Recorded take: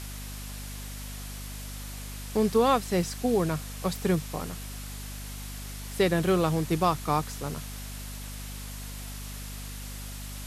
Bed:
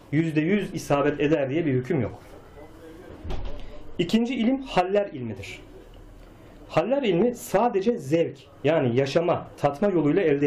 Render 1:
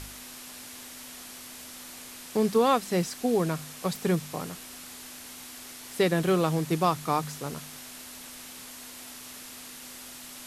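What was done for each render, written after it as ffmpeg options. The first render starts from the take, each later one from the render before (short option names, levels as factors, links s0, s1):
-af "bandreject=f=50:t=h:w=4,bandreject=f=100:t=h:w=4,bandreject=f=150:t=h:w=4,bandreject=f=200:t=h:w=4"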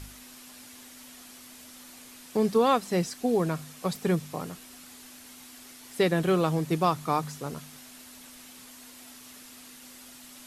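-af "afftdn=nr=6:nf=-44"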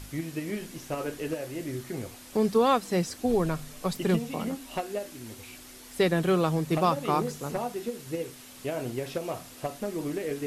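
-filter_complex "[1:a]volume=0.282[s0];[0:a][s0]amix=inputs=2:normalize=0"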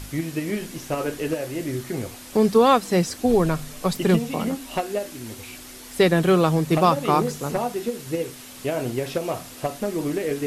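-af "volume=2.11"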